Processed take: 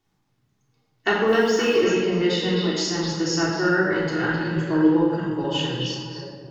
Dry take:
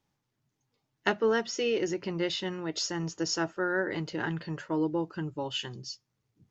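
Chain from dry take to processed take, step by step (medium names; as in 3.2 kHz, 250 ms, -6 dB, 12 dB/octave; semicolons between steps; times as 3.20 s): 1.28–1.76 s: word length cut 10-bit, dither triangular; repeats whose band climbs or falls 259 ms, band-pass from 3.4 kHz, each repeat -1.4 oct, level -4 dB; simulated room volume 1400 m³, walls mixed, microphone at 3.4 m; trim +1.5 dB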